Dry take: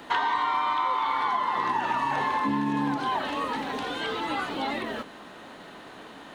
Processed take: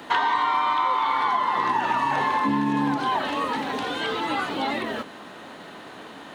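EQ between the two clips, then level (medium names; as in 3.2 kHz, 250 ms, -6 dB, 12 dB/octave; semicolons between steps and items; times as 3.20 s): high-pass 70 Hz; +3.5 dB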